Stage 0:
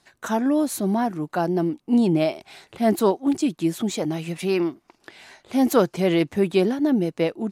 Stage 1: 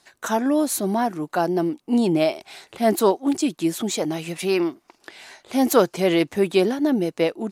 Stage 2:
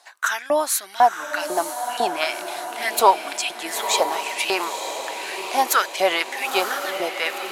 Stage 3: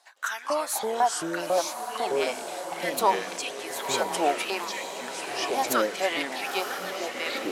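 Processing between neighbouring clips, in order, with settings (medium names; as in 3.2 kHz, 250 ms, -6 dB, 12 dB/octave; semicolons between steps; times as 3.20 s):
tone controls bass -7 dB, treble +3 dB; trim +2.5 dB
LFO high-pass saw up 2 Hz 660–3000 Hz; echo that smears into a reverb 950 ms, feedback 53%, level -7.5 dB; trim +3.5 dB
on a send at -23 dB: reverberation RT60 0.55 s, pre-delay 103 ms; on the sum: ever faster or slower copies 163 ms, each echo -5 st, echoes 2; trim -8 dB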